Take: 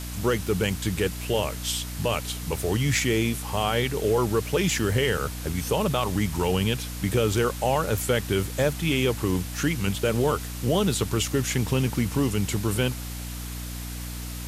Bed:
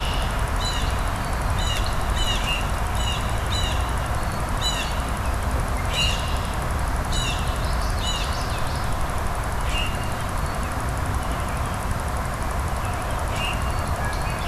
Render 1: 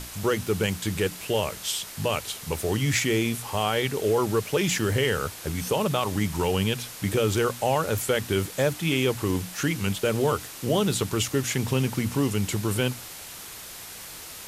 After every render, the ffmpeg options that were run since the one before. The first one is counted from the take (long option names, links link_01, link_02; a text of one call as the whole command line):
ffmpeg -i in.wav -af "bandreject=frequency=60:width_type=h:width=6,bandreject=frequency=120:width_type=h:width=6,bandreject=frequency=180:width_type=h:width=6,bandreject=frequency=240:width_type=h:width=6,bandreject=frequency=300:width_type=h:width=6" out.wav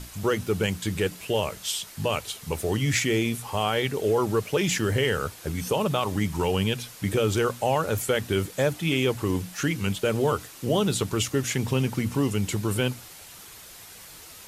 ffmpeg -i in.wav -af "afftdn=noise_reduction=6:noise_floor=-41" out.wav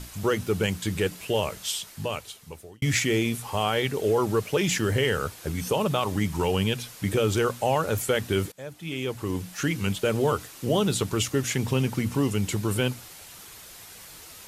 ffmpeg -i in.wav -filter_complex "[0:a]asplit=3[link_01][link_02][link_03];[link_01]atrim=end=2.82,asetpts=PTS-STARTPTS,afade=type=out:start_time=1.64:duration=1.18[link_04];[link_02]atrim=start=2.82:end=8.52,asetpts=PTS-STARTPTS,afade=type=in:duration=0.004:curve=hsin,afade=type=out:start_time=5.696:duration=0.004:curve=hsin:silence=0.0794328[link_05];[link_03]atrim=start=8.52,asetpts=PTS-STARTPTS,afade=type=in:duration=1.22:silence=0.0794328[link_06];[link_04][link_05][link_06]concat=n=3:v=0:a=1" out.wav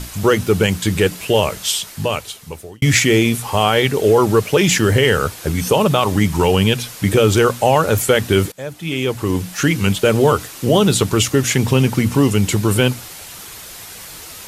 ffmpeg -i in.wav -af "volume=10.5dB,alimiter=limit=-2dB:level=0:latency=1" out.wav